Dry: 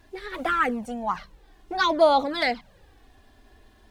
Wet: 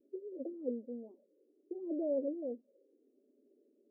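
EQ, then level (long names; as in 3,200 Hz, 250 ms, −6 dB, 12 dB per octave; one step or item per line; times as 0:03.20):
linear-phase brick-wall high-pass 230 Hz
Chebyshev low-pass with heavy ripple 570 Hz, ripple 3 dB
−4.5 dB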